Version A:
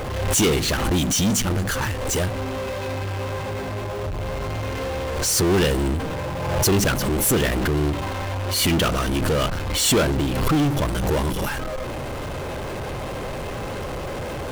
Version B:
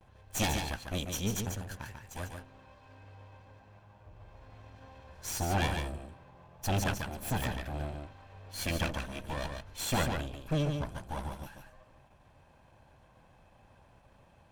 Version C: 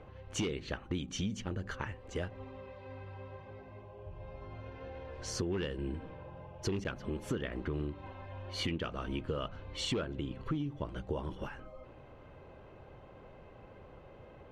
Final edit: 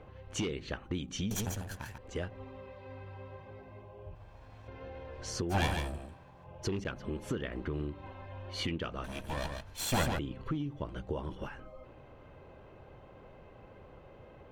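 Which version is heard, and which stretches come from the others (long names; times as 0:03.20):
C
0:01.31–0:01.98: punch in from B
0:04.15–0:04.68: punch in from B
0:05.52–0:06.46: punch in from B, crossfade 0.06 s
0:09.04–0:10.19: punch in from B
not used: A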